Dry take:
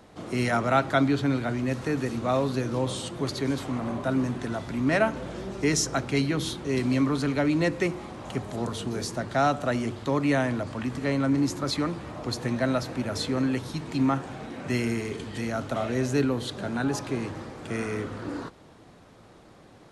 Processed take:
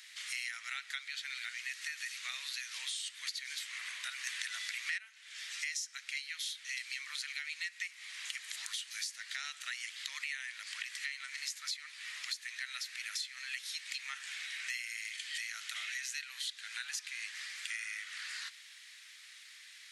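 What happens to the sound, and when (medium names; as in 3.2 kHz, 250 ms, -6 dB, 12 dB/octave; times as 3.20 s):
4.27–4.98 s: gain +11 dB
whole clip: Chebyshev high-pass 1.9 kHz, order 4; compression 8:1, threshold -48 dBFS; trim +10.5 dB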